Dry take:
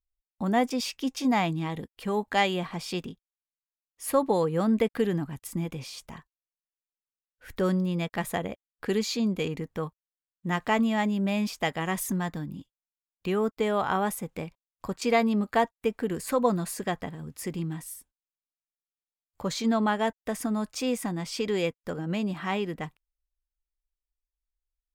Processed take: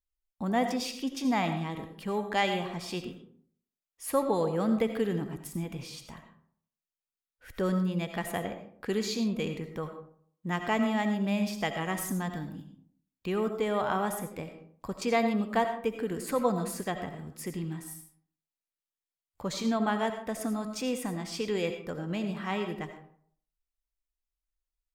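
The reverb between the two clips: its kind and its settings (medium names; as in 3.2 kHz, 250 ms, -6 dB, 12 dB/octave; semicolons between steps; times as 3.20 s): algorithmic reverb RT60 0.59 s, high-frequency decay 0.5×, pre-delay 45 ms, DRR 7 dB; trim -3.5 dB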